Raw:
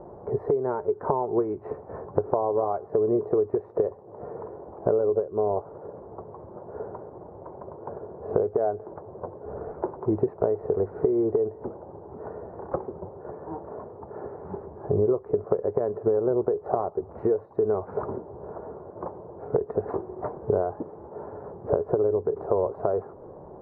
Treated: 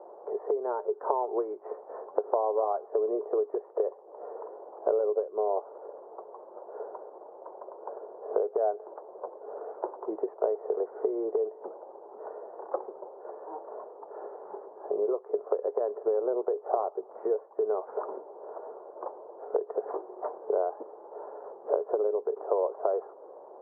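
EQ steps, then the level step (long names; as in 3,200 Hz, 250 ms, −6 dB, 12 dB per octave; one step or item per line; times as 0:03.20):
high-pass filter 450 Hz 24 dB per octave
low-pass filter 1,400 Hz 12 dB per octave
high-frequency loss of the air 230 metres
0.0 dB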